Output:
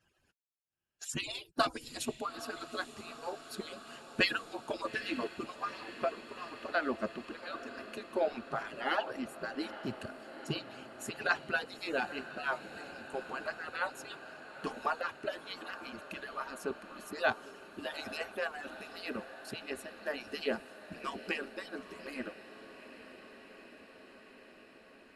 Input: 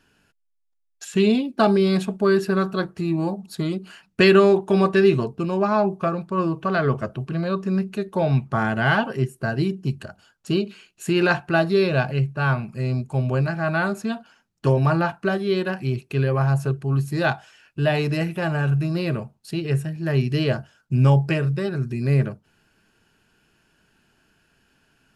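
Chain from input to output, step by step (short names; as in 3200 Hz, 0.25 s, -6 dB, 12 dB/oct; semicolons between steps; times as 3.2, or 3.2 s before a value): median-filter separation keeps percussive; 1.09–2.21 tone controls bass +10 dB, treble +9 dB; on a send: diffused feedback echo 0.871 s, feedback 74%, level -13.5 dB; on the sum: gain -7 dB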